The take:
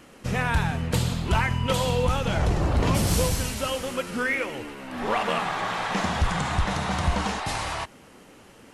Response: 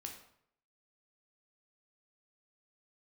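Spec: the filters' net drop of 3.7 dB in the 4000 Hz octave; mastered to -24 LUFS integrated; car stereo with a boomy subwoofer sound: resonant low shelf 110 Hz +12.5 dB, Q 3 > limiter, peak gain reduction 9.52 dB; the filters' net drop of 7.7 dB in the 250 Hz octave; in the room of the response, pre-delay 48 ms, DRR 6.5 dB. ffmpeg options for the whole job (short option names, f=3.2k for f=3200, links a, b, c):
-filter_complex "[0:a]equalizer=f=250:t=o:g=-6,equalizer=f=4k:t=o:g=-5,asplit=2[a][b];[1:a]atrim=start_sample=2205,adelay=48[c];[b][c]afir=irnorm=-1:irlink=0,volume=-3dB[d];[a][d]amix=inputs=2:normalize=0,lowshelf=f=110:t=q:w=3:g=12.5,volume=-7.5dB,alimiter=limit=-13dB:level=0:latency=1"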